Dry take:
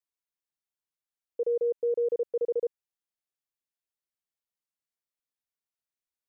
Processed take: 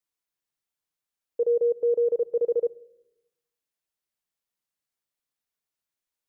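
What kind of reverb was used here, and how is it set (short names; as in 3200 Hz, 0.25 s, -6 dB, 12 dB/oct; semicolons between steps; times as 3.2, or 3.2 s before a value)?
shoebox room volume 2700 m³, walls furnished, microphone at 0.45 m; gain +4 dB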